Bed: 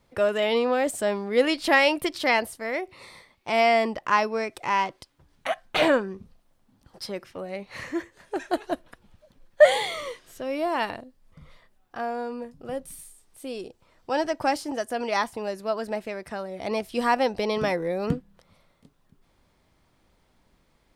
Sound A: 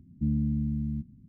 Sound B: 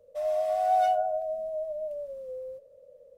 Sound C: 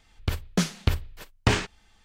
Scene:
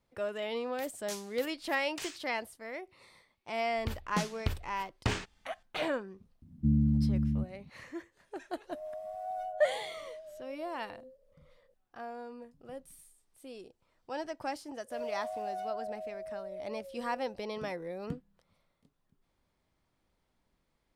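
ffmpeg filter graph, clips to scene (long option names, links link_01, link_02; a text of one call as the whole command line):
ffmpeg -i bed.wav -i cue0.wav -i cue1.wav -i cue2.wav -filter_complex "[3:a]asplit=2[link_01][link_02];[2:a]asplit=2[link_03][link_04];[0:a]volume=-12.5dB[link_05];[link_01]aderivative[link_06];[1:a]asplit=2[link_07][link_08];[link_08]adelay=13,volume=-7.5dB[link_09];[link_07][link_09]amix=inputs=2:normalize=0[link_10];[link_03]equalizer=frequency=3500:width_type=o:width=2.4:gain=-8[link_11];[link_04]acompressor=threshold=-26dB:ratio=6:attack=3.2:release=140:knee=1:detection=peak[link_12];[link_06]atrim=end=2.04,asetpts=PTS-STARTPTS,volume=-7.5dB,afade=type=in:duration=0.004:curve=hsin,afade=type=out:start_time=2.036:duration=0.004:curve=hsin,adelay=510[link_13];[link_02]atrim=end=2.04,asetpts=PTS-STARTPTS,volume=-9.5dB,afade=type=in:duration=0.004:curve=hsin,afade=type=out:start_time=2.036:duration=0.004:curve=hsin,adelay=3590[link_14];[link_10]atrim=end=1.28,asetpts=PTS-STARTPTS,volume=-1.5dB,afade=type=in:duration=0.004:curve=hsin,afade=type=out:start_time=1.276:duration=0.004:curve=hsin,adelay=283122S[link_15];[link_11]atrim=end=3.17,asetpts=PTS-STARTPTS,volume=-13.5dB,afade=type=in:duration=0.004:curve=hsin,afade=type=out:start_time=3.166:duration=0.004:curve=hsin,adelay=8570[link_16];[link_12]atrim=end=3.17,asetpts=PTS-STARTPTS,volume=-9dB,afade=type=in:duration=0.004:curve=hsin,afade=type=out:start_time=3.166:duration=0.004:curve=hsin,adelay=650916S[link_17];[link_05][link_13][link_14][link_15][link_16][link_17]amix=inputs=6:normalize=0" out.wav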